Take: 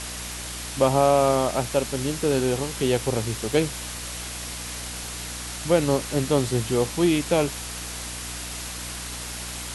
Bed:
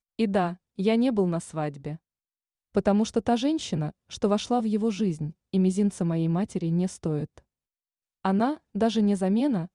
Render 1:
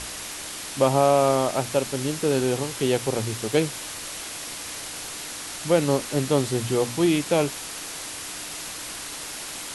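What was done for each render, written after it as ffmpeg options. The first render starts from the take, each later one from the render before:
-af "bandreject=f=60:t=h:w=4,bandreject=f=120:t=h:w=4,bandreject=f=180:t=h:w=4,bandreject=f=240:t=h:w=4"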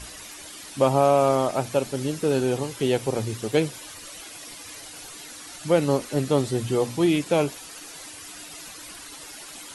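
-af "afftdn=nr=11:nf=-36"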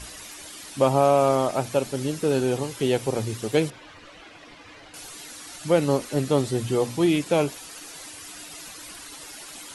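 -filter_complex "[0:a]asettb=1/sr,asplit=3[a][b][c];[a]atrim=end=3.704[d];[b]atrim=start=3.7:end=4.94,asetpts=PTS-STARTPTS,afade=t=in:d=0.004:c=qsin,afade=t=out:st=1.236:d=0.004:c=qsin,lowpass=2.6k[e];[c]atrim=start=4.936[f];[d][e]acrossfade=d=0.004:c1=hsin:c2=qsin[g];[g][f]acrossfade=d=0.004:c1=qsin:c2=hsin"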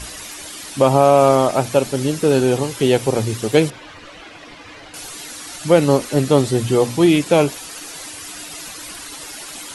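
-af "volume=7.5dB,alimiter=limit=-1dB:level=0:latency=1"

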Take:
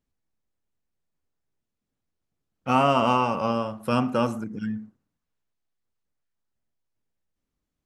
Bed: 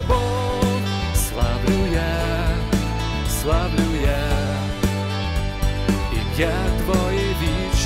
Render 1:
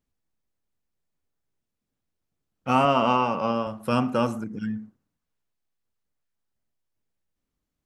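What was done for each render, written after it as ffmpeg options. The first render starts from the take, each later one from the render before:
-filter_complex "[0:a]asettb=1/sr,asplit=3[a][b][c];[a]atrim=end=2.854[d];[b]atrim=start=2.85:end=3.67,asetpts=PTS-STARTPTS,afade=t=in:d=0.004:c=qsin,afade=t=out:st=0.816:d=0.004:c=qsin,highpass=120,lowpass=5.4k[e];[c]atrim=start=3.666[f];[d][e]acrossfade=d=0.004:c1=hsin:c2=qsin[g];[g][f]acrossfade=d=0.004:c1=qsin:c2=hsin"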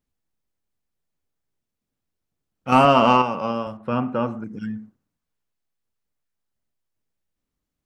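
-filter_complex "[0:a]asettb=1/sr,asplit=3[a][b][c];[a]atrim=end=2.724[d];[b]atrim=start=2.72:end=3.22,asetpts=PTS-STARTPTS,afade=t=in:d=0.004:c=qsin,afade=t=out:st=0.496:d=0.004:c=qsin,acontrast=63[e];[c]atrim=start=3.216[f];[d][e]acrossfade=d=0.004:c1=hsin:c2=qsin[g];[g][f]acrossfade=d=0.004:c1=qsin:c2=hsin,asettb=1/sr,asplit=3[h][i][j];[h]atrim=end=3.774[k];[i]atrim=start=3.77:end=4.44,asetpts=PTS-STARTPTS,afade=t=in:d=0.004:c=qsin,afade=t=out:st=0.666:d=0.004:c=qsin,lowpass=2.2k[l];[j]atrim=start=4.436[m];[k][l]acrossfade=d=0.004:c1=hsin:c2=qsin[n];[n][m]acrossfade=d=0.004:c1=qsin:c2=hsin"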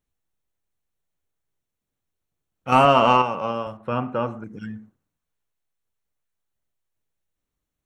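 -af "equalizer=f=230:t=o:w=0.71:g=-5.5,bandreject=f=4.9k:w=6"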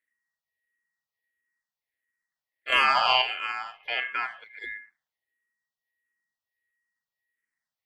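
-filter_complex "[0:a]aeval=exprs='val(0)*sin(2*PI*1900*n/s)':c=same,asplit=2[a][b];[b]afreqshift=-1.5[c];[a][c]amix=inputs=2:normalize=1"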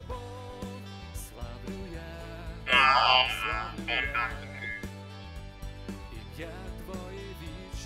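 -filter_complex "[1:a]volume=-20dB[a];[0:a][a]amix=inputs=2:normalize=0"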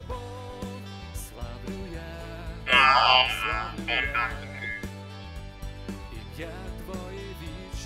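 -af "volume=3dB"

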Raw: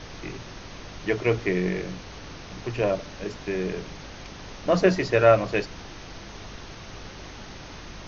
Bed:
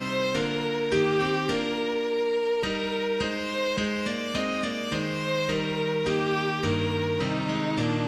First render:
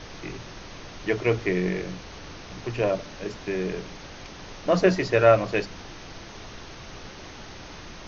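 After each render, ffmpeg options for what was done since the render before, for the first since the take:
-af "bandreject=f=50:t=h:w=4,bandreject=f=100:t=h:w=4,bandreject=f=150:t=h:w=4,bandreject=f=200:t=h:w=4,bandreject=f=250:t=h:w=4"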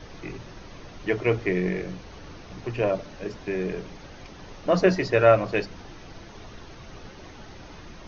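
-af "afftdn=nr=7:nf=-42"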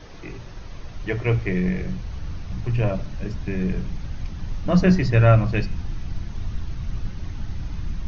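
-af "bandreject=f=125.8:t=h:w=4,bandreject=f=251.6:t=h:w=4,bandreject=f=377.4:t=h:w=4,bandreject=f=503.2:t=h:w=4,bandreject=f=629:t=h:w=4,bandreject=f=754.8:t=h:w=4,bandreject=f=880.6:t=h:w=4,bandreject=f=1.0064k:t=h:w=4,bandreject=f=1.1322k:t=h:w=4,bandreject=f=1.258k:t=h:w=4,bandreject=f=1.3838k:t=h:w=4,bandreject=f=1.5096k:t=h:w=4,bandreject=f=1.6354k:t=h:w=4,bandreject=f=1.7612k:t=h:w=4,bandreject=f=1.887k:t=h:w=4,bandreject=f=2.0128k:t=h:w=4,bandreject=f=2.1386k:t=h:w=4,bandreject=f=2.2644k:t=h:w=4,bandreject=f=2.3902k:t=h:w=4,bandreject=f=2.516k:t=h:w=4,bandreject=f=2.6418k:t=h:w=4,bandreject=f=2.7676k:t=h:w=4,bandreject=f=2.8934k:t=h:w=4,bandreject=f=3.0192k:t=h:w=4,bandreject=f=3.145k:t=h:w=4,bandreject=f=3.2708k:t=h:w=4,bandreject=f=3.3966k:t=h:w=4,bandreject=f=3.5224k:t=h:w=4,asubboost=boost=11:cutoff=140"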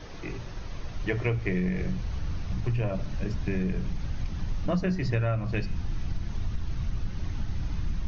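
-af "acompressor=threshold=-23dB:ratio=12"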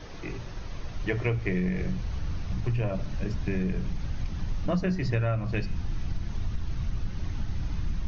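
-af anull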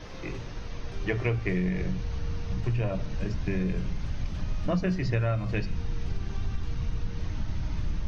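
-filter_complex "[1:a]volume=-24dB[a];[0:a][a]amix=inputs=2:normalize=0"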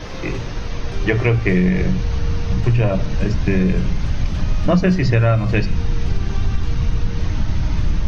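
-af "volume=12dB,alimiter=limit=-3dB:level=0:latency=1"

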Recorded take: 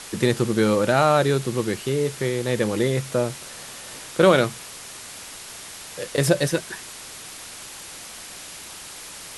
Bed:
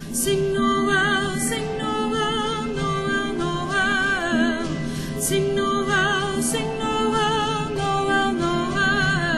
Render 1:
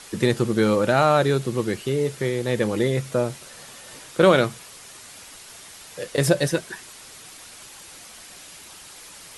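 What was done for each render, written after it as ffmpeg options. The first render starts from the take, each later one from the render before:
-af "afftdn=nr=6:nf=-39"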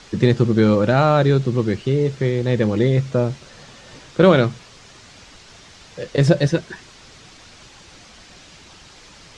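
-af "lowpass=f=6.3k:w=0.5412,lowpass=f=6.3k:w=1.3066,lowshelf=f=260:g=10.5"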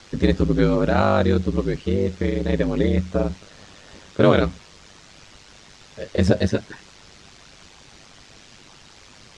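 -af "aeval=exprs='val(0)*sin(2*PI*50*n/s)':c=same"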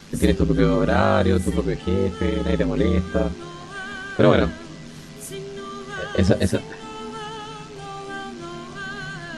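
-filter_complex "[1:a]volume=-12.5dB[a];[0:a][a]amix=inputs=2:normalize=0"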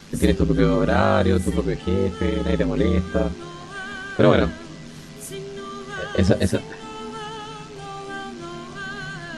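-af anull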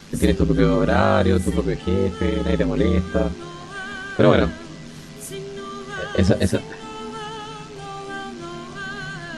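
-af "volume=1dB,alimiter=limit=-3dB:level=0:latency=1"

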